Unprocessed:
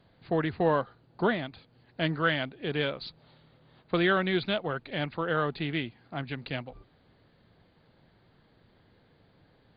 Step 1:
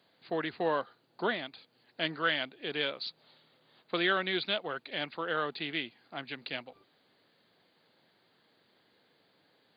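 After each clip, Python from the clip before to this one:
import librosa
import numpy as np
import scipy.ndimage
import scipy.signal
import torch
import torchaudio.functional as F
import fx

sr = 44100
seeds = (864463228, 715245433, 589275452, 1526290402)

y = scipy.signal.sosfilt(scipy.signal.butter(2, 260.0, 'highpass', fs=sr, output='sos'), x)
y = fx.high_shelf(y, sr, hz=2800.0, db=11.5)
y = y * 10.0 ** (-5.0 / 20.0)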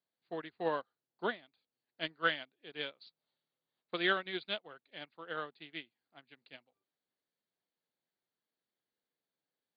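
y = fx.upward_expand(x, sr, threshold_db=-43.0, expansion=2.5)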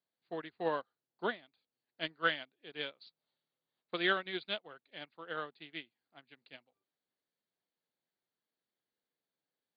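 y = x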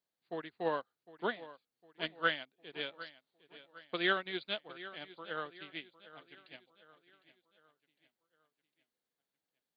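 y = fx.echo_feedback(x, sr, ms=756, feedback_pct=45, wet_db=-16.5)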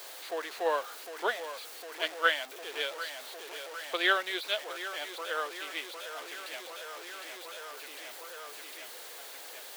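y = x + 0.5 * 10.0 ** (-42.0 / 20.0) * np.sign(x)
y = scipy.signal.sosfilt(scipy.signal.butter(4, 430.0, 'highpass', fs=sr, output='sos'), y)
y = y * 10.0 ** (5.0 / 20.0)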